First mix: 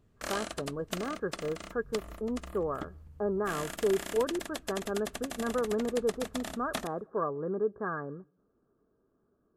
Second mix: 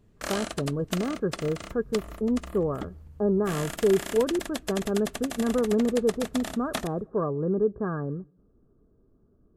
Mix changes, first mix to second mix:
speech: add tilt -4.5 dB/oct; background +4.0 dB

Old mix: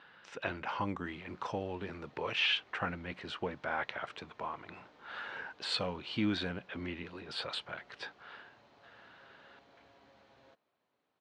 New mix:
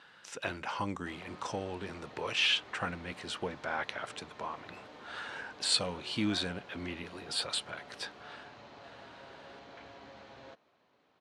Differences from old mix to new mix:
speech: remove LPF 3200 Hz 12 dB/oct; background +11.0 dB

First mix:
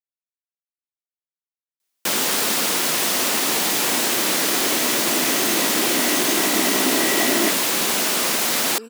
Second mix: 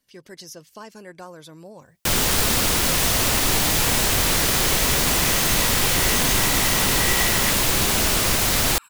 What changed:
speech: entry -2.70 s; second sound: add brick-wall FIR high-pass 860 Hz; master: remove HPF 210 Hz 24 dB/oct

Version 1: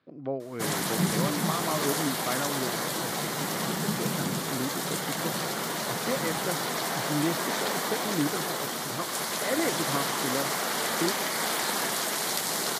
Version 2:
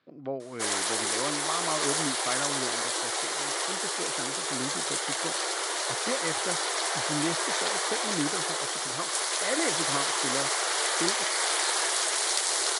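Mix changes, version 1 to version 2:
background: add brick-wall FIR band-pass 310–11000 Hz; master: add tilt +1.5 dB/oct

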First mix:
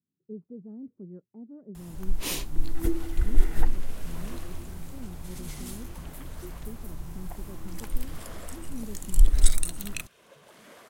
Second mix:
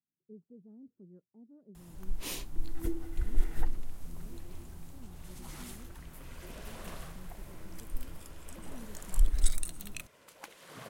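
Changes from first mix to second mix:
speech -11.0 dB; first sound -7.5 dB; second sound: entry +2.60 s

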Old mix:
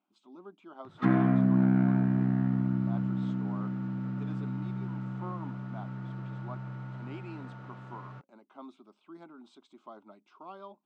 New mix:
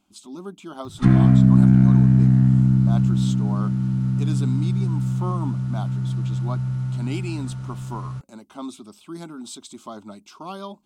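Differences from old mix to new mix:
speech +10.0 dB; master: remove BPF 320–2000 Hz

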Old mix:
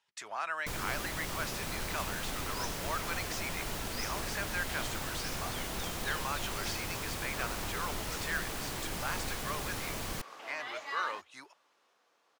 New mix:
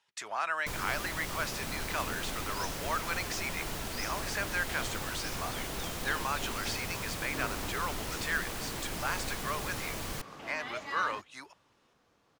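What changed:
speech +3.5 dB; second sound: remove HPF 520 Hz

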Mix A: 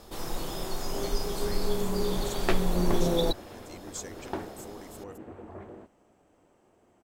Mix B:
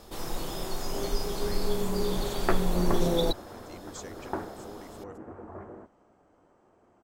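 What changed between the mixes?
speech: add air absorption 74 m; second sound: add synth low-pass 1400 Hz, resonance Q 1.5

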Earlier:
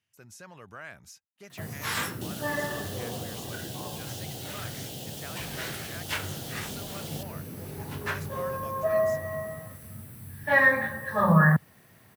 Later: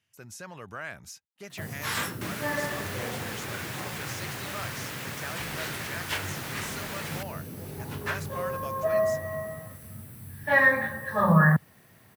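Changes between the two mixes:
speech +5.0 dB; second sound: remove elliptic band-stop 780–3000 Hz

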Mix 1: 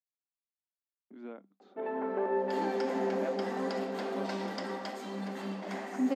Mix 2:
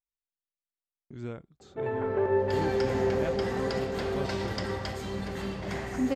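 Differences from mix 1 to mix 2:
speech: remove air absorption 230 m; master: remove rippled Chebyshev high-pass 190 Hz, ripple 6 dB

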